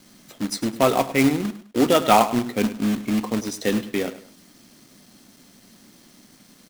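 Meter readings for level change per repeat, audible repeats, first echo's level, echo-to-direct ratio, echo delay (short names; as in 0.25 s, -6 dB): -9.5 dB, 2, -14.5 dB, -14.0 dB, 0.103 s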